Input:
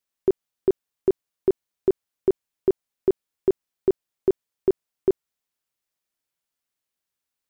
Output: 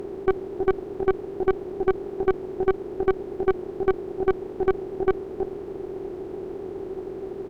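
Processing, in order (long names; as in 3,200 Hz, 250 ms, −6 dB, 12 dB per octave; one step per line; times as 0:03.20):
compressor on every frequency bin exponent 0.2
single-tap delay 323 ms −10 dB
tube saturation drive 19 dB, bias 0.75
level +4.5 dB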